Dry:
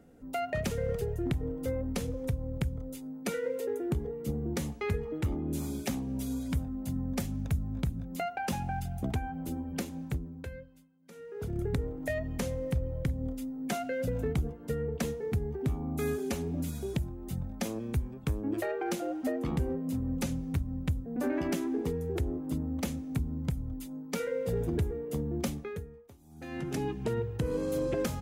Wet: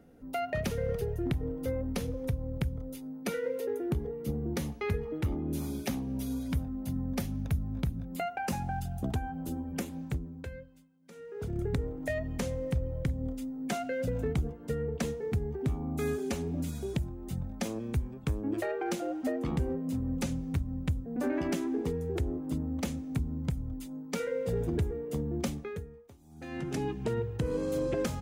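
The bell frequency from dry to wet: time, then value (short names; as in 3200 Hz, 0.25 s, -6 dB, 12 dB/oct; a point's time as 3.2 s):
bell -8.5 dB 0.28 oct
8.02 s 7600 Hz
8.77 s 2200 Hz
9.62 s 2200 Hz
10.1 s 12000 Hz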